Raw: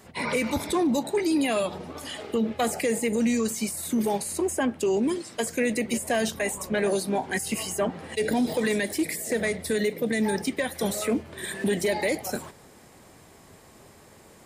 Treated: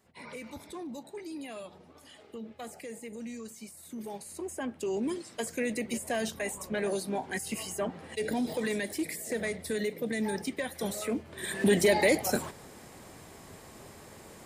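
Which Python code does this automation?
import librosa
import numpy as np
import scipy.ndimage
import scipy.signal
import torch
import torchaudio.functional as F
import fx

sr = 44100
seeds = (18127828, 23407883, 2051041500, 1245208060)

y = fx.gain(x, sr, db=fx.line((3.8, -17.0), (5.1, -6.5), (11.22, -6.5), (11.72, 2.0)))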